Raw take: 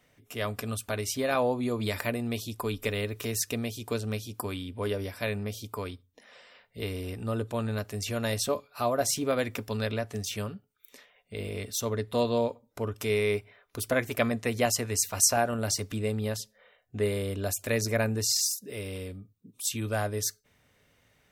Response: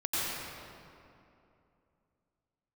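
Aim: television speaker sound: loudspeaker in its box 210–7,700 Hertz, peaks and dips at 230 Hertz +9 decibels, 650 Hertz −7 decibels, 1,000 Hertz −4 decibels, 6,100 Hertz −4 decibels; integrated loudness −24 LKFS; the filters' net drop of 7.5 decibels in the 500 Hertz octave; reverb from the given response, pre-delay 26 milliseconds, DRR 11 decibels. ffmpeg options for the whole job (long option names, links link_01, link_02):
-filter_complex "[0:a]equalizer=frequency=500:width_type=o:gain=-7,asplit=2[link_01][link_02];[1:a]atrim=start_sample=2205,adelay=26[link_03];[link_02][link_03]afir=irnorm=-1:irlink=0,volume=-20dB[link_04];[link_01][link_04]amix=inputs=2:normalize=0,highpass=frequency=210:width=0.5412,highpass=frequency=210:width=1.3066,equalizer=frequency=230:width_type=q:width=4:gain=9,equalizer=frequency=650:width_type=q:width=4:gain=-7,equalizer=frequency=1000:width_type=q:width=4:gain=-4,equalizer=frequency=6100:width_type=q:width=4:gain=-4,lowpass=frequency=7700:width=0.5412,lowpass=frequency=7700:width=1.3066,volume=8dB"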